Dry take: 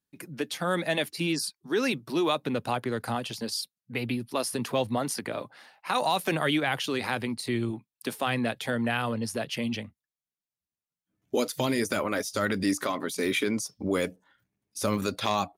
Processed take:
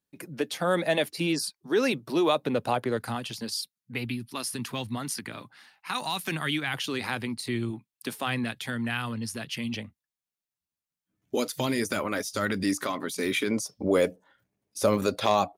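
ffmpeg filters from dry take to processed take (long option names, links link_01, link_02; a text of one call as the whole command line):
ffmpeg -i in.wav -af "asetnsamples=nb_out_samples=441:pad=0,asendcmd='2.97 equalizer g -5.5;4.05 equalizer g -13.5;6.74 equalizer g -5;8.44 equalizer g -11.5;9.74 equalizer g -2;13.51 equalizer g 7.5',equalizer=frequency=560:width_type=o:width=1.2:gain=4.5" out.wav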